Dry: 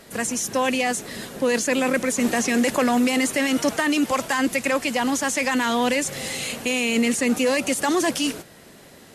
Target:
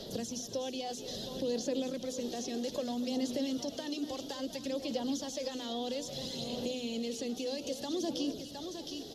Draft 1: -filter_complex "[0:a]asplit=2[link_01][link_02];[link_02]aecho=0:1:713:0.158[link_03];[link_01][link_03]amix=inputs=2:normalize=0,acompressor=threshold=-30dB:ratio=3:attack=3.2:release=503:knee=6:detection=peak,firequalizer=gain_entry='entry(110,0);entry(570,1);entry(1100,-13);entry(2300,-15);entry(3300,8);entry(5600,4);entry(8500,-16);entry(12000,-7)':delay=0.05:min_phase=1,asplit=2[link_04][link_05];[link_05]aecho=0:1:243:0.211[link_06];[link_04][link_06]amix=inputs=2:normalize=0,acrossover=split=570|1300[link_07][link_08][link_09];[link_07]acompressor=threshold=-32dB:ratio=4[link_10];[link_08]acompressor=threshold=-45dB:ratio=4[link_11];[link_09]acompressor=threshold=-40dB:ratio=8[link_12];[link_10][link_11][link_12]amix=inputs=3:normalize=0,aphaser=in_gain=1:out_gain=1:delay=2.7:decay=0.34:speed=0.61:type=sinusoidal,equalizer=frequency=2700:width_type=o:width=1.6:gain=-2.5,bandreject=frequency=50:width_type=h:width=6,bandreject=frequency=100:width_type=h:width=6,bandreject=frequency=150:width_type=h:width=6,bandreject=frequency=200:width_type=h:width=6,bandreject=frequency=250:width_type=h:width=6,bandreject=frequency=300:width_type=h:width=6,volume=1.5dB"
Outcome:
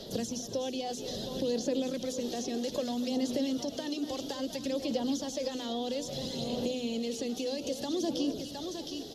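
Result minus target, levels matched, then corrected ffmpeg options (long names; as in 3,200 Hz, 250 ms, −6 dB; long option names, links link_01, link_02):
downward compressor: peak gain reduction −5 dB
-filter_complex "[0:a]asplit=2[link_01][link_02];[link_02]aecho=0:1:713:0.158[link_03];[link_01][link_03]amix=inputs=2:normalize=0,acompressor=threshold=-37.5dB:ratio=3:attack=3.2:release=503:knee=6:detection=peak,firequalizer=gain_entry='entry(110,0);entry(570,1);entry(1100,-13);entry(2300,-15);entry(3300,8);entry(5600,4);entry(8500,-16);entry(12000,-7)':delay=0.05:min_phase=1,asplit=2[link_04][link_05];[link_05]aecho=0:1:243:0.211[link_06];[link_04][link_06]amix=inputs=2:normalize=0,acrossover=split=570|1300[link_07][link_08][link_09];[link_07]acompressor=threshold=-32dB:ratio=4[link_10];[link_08]acompressor=threshold=-45dB:ratio=4[link_11];[link_09]acompressor=threshold=-40dB:ratio=8[link_12];[link_10][link_11][link_12]amix=inputs=3:normalize=0,aphaser=in_gain=1:out_gain=1:delay=2.7:decay=0.34:speed=0.61:type=sinusoidal,equalizer=frequency=2700:width_type=o:width=1.6:gain=-2.5,bandreject=frequency=50:width_type=h:width=6,bandreject=frequency=100:width_type=h:width=6,bandreject=frequency=150:width_type=h:width=6,bandreject=frequency=200:width_type=h:width=6,bandreject=frequency=250:width_type=h:width=6,bandreject=frequency=300:width_type=h:width=6,volume=1.5dB"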